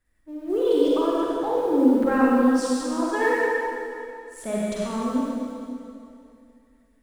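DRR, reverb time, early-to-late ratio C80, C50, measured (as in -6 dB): -6.0 dB, 2.6 s, -2.5 dB, -4.5 dB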